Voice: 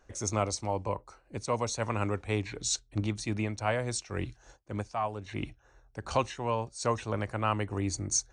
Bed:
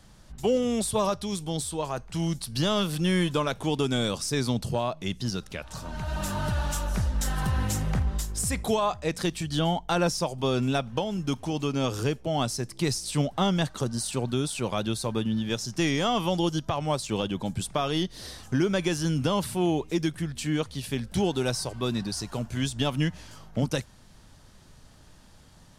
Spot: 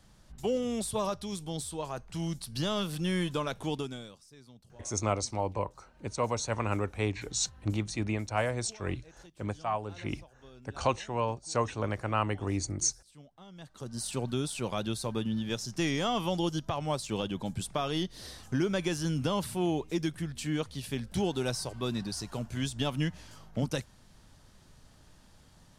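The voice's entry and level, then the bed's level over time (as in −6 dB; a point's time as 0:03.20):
4.70 s, 0.0 dB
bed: 0:03.74 −6 dB
0:04.25 −28 dB
0:13.46 −28 dB
0:14.04 −4.5 dB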